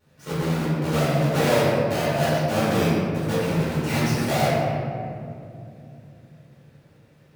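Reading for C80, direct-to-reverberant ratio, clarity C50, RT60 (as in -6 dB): -1.0 dB, -11.0 dB, -3.0 dB, 2.6 s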